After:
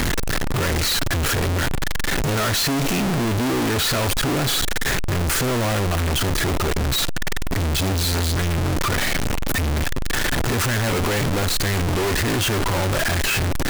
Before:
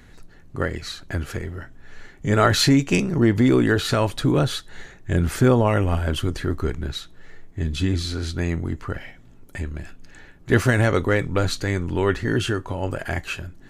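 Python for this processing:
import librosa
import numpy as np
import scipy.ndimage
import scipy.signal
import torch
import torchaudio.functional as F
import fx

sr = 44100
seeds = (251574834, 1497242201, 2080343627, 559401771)

y = np.sign(x) * np.sqrt(np.mean(np.square(x)))
y = y * librosa.db_to_amplitude(2.0)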